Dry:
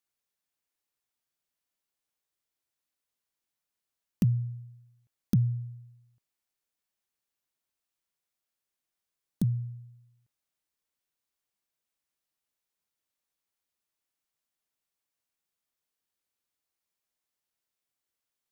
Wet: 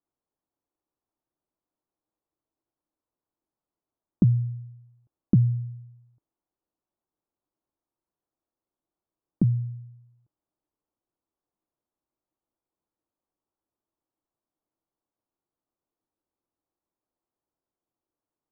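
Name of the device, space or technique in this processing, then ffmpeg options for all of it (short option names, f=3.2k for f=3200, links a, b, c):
under water: -af "lowpass=f=1.1k:w=0.5412,lowpass=f=1.1k:w=1.3066,equalizer=f=320:t=o:w=0.39:g=8,volume=5dB"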